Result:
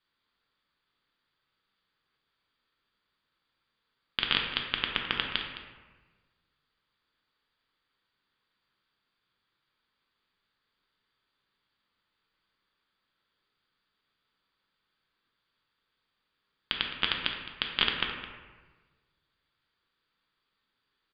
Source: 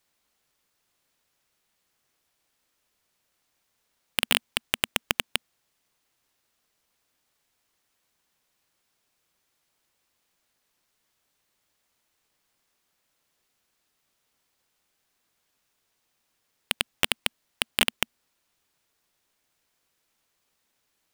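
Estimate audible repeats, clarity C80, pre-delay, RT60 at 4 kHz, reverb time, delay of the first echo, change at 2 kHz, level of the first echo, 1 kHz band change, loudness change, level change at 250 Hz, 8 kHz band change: 1, 5.0 dB, 5 ms, 0.75 s, 1.3 s, 0.213 s, -2.5 dB, -14.5 dB, -1.0 dB, -3.0 dB, -3.0 dB, under -40 dB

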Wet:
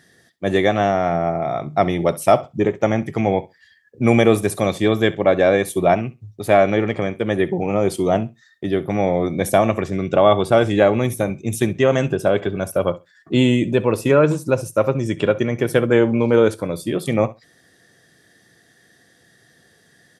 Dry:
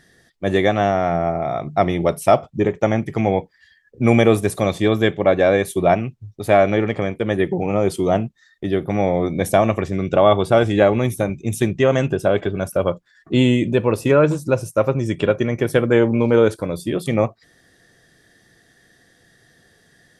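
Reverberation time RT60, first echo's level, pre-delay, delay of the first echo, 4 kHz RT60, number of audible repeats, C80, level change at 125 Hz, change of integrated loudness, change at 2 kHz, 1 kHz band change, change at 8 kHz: none, -19.5 dB, none, 66 ms, none, 1, none, -1.0 dB, 0.0 dB, 0.0 dB, 0.0 dB, +1.5 dB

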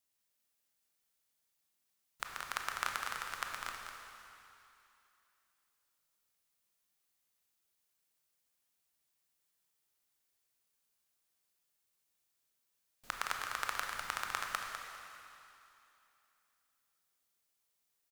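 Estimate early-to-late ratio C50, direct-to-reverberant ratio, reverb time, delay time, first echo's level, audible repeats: 1.5 dB, 0.5 dB, 2.8 s, 0.201 s, -7.5 dB, 1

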